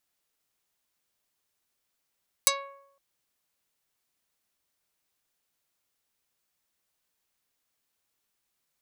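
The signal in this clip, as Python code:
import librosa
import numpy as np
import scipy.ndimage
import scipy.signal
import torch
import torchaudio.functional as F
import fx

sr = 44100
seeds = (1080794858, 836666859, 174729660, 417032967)

y = fx.pluck(sr, length_s=0.51, note=73, decay_s=0.78, pick=0.32, brightness='dark')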